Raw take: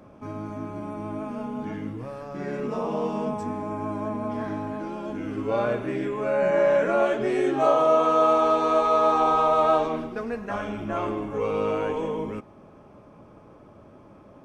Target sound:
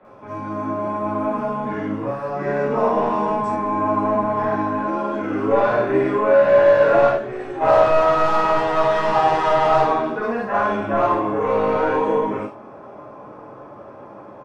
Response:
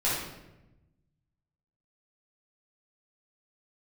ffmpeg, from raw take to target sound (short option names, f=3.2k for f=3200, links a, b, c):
-filter_complex "[0:a]asplit=2[a][b];[b]highpass=f=720:p=1,volume=20dB,asoftclip=type=tanh:threshold=-8.5dB[c];[a][c]amix=inputs=2:normalize=0,lowpass=f=3.1k:p=1,volume=-6dB,acrossover=split=100|1700[d][e][f];[e]dynaudnorm=f=300:g=3:m=6dB[g];[d][g][f]amix=inputs=3:normalize=0,acrossover=split=3000[h][i];[i]adelay=50[j];[h][j]amix=inputs=2:normalize=0,asettb=1/sr,asplit=3[k][l][m];[k]atrim=end=7.094[n];[l]atrim=start=7.09:end=7.61,asetpts=PTS-STARTPTS,afade=t=in:d=0.004:c=qsin,afade=t=out:st=0.516:d=0.004:c=qsin,acrossover=split=120[o][p];[p]acompressor=threshold=-30dB:ratio=2[q];[o][q]amix=inputs=2:normalize=0[r];[m]atrim=start=7.606[s];[n][r]acrossfade=d=0.004:c1=hsin:c2=qsin[t];[t][s]acrossfade=d=0.004:c1=qsin:c2=hsin[u];[1:a]atrim=start_sample=2205,afade=t=out:st=0.15:d=0.01,atrim=end_sample=7056[v];[u][v]afir=irnorm=-1:irlink=0,volume=-13.5dB"